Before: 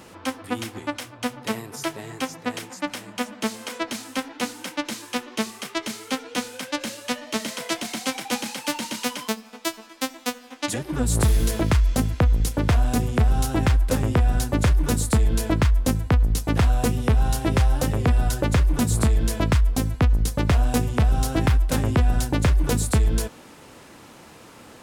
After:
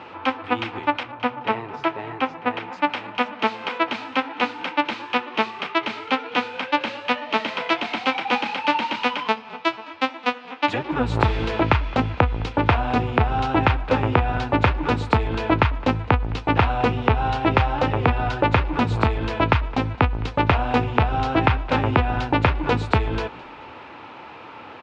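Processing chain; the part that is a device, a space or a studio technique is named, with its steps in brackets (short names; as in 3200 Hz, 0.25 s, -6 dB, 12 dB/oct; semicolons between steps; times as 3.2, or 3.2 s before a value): 1.03–2.73 high shelf 3900 Hz -11.5 dB; frequency-shifting delay pedal into a guitar cabinet (frequency-shifting echo 0.213 s, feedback 35%, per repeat -43 Hz, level -21 dB; speaker cabinet 99–3600 Hz, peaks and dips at 150 Hz -7 dB, 210 Hz -7 dB, 880 Hz +9 dB, 1300 Hz +5 dB, 2500 Hz +6 dB); gain +4 dB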